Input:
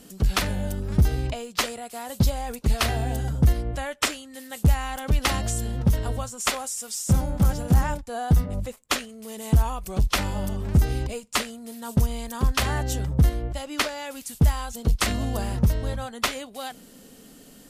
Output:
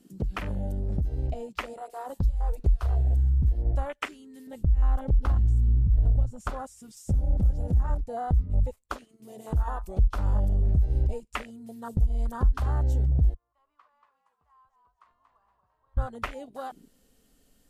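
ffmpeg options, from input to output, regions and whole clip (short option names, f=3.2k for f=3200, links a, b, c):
-filter_complex "[0:a]asettb=1/sr,asplit=3[a][b][c];[a]atrim=end=1.734[d];[b]atrim=start=1.73:end=3.42,asetpts=PTS-STARTPTS,afade=t=in:d=0.004:c=qsin,afade=t=out:st=1.686:d=0.004:c=qsin,bandreject=f=118.8:t=h:w=4,bandreject=f=237.6:t=h:w=4,bandreject=f=356.4:t=h:w=4,bandreject=f=475.2:t=h:w=4,bandreject=f=594:t=h:w=4,bandreject=f=712.8:t=h:w=4,bandreject=f=831.6:t=h:w=4,bandreject=f=950.4:t=h:w=4,bandreject=f=1.0692k:t=h:w=4,bandreject=f=1.188k:t=h:w=4,bandreject=f=1.3068k:t=h:w=4,bandreject=f=1.4256k:t=h:w=4,bandreject=f=1.5444k:t=h:w=4,bandreject=f=1.6632k:t=h:w=4,bandreject=f=1.782k:t=h:w=4,bandreject=f=1.9008k:t=h:w=4,bandreject=f=2.0196k:t=h:w=4,bandreject=f=2.1384k:t=h:w=4,bandreject=f=2.2572k:t=h:w=4,bandreject=f=2.376k:t=h:w=4,bandreject=f=2.4948k:t=h:w=4,bandreject=f=2.6136k:t=h:w=4,bandreject=f=2.7324k:t=h:w=4,bandreject=f=2.8512k:t=h:w=4,bandreject=f=2.97k:t=h:w=4,bandreject=f=3.0888k:t=h:w=4,bandreject=f=3.2076k:t=h:w=4,bandreject=f=3.3264k:t=h:w=4,bandreject=f=3.4452k:t=h:w=4,bandreject=f=3.564k:t=h:w=4,bandreject=f=3.6828k:t=h:w=4,bandreject=f=3.8016k:t=h:w=4,bandreject=f=3.9204k:t=h:w=4,bandreject=f=4.0392k:t=h:w=4,bandreject=f=4.158k:t=h:w=4,bandreject=f=4.2768k:t=h:w=4,bandreject=f=4.3956k:t=h:w=4,bandreject=f=4.5144k:t=h:w=4,asubboost=boost=6:cutoff=93,bandreject=f=230:w=6.5[e];[c]atrim=start=3.416[f];[d][e]acrossfade=d=0.004:c1=hsin:c2=qsin[g];[g][f]acrossfade=d=0.004:c1=qsin:c2=hsin,asettb=1/sr,asplit=3[h][i][j];[h]atrim=end=4.474[k];[i]atrim=start=4.47:end=6.97,asetpts=PTS-STARTPTS,afade=t=in:d=0.004:c=qsin,afade=t=out:st=2.496:d=0.004:c=qsin,bass=f=250:g=9,treble=f=4k:g=-5,acompressor=threshold=-16dB:ratio=10:attack=3.2:release=140:knee=1:detection=peak[l];[j]atrim=start=6.966[m];[k][l]acrossfade=d=0.004:c1=hsin:c2=qsin[n];[n][m]acrossfade=d=0.004:c1=qsin:c2=hsin,asettb=1/sr,asplit=3[o][p][q];[o]atrim=end=8.974[r];[p]atrim=start=8.97:end=9.99,asetpts=PTS-STARTPTS,afade=t=in:d=0.004:c=qsin,afade=t=out:st=1.016:d=0.004:c=qsin,lowshelf=f=160:g=-11.5,bandreject=f=112:t=h:w=4,bandreject=f=224:t=h:w=4,bandreject=f=336:t=h:w=4,bandreject=f=448:t=h:w=4,bandreject=f=560:t=h:w=4,bandreject=f=672:t=h:w=4,bandreject=f=784:t=h:w=4,bandreject=f=896:t=h:w=4,bandreject=f=1.008k:t=h:w=4,bandreject=f=1.12k:t=h:w=4,bandreject=f=1.232k:t=h:w=4[s];[q]atrim=start=9.986[t];[r][s]acrossfade=d=0.004:c1=hsin:c2=qsin[u];[u][t]acrossfade=d=0.004:c1=qsin:c2=hsin,asettb=1/sr,asplit=3[v][w][x];[v]atrim=end=13.344[y];[w]atrim=start=13.34:end=15.97,asetpts=PTS-STARTPTS,afade=t=in:d=0.004:c=qsin,afade=t=out:st=2.626:d=0.004:c=qsin,acompressor=threshold=-34dB:ratio=1.5:attack=3.2:release=140:knee=1:detection=peak,bandpass=f=1.1k:t=q:w=9.8,asplit=6[z][aa][ab][ac][ad][ae];[aa]adelay=234,afreqshift=-59,volume=-5.5dB[af];[ab]adelay=468,afreqshift=-118,volume=-13dB[ag];[ac]adelay=702,afreqshift=-177,volume=-20.6dB[ah];[ad]adelay=936,afreqshift=-236,volume=-28.1dB[ai];[ae]adelay=1170,afreqshift=-295,volume=-35.6dB[aj];[z][af][ag][ah][ai][aj]amix=inputs=6:normalize=0,atrim=end_sample=115983[ak];[x]atrim=start=15.966[al];[y][ak]acrossfade=d=0.004:c1=hsin:c2=qsin[am];[am][al]acrossfade=d=0.004:c1=qsin:c2=hsin,acompressor=threshold=-26dB:ratio=12,afwtdn=0.0224,asubboost=boost=4.5:cutoff=85"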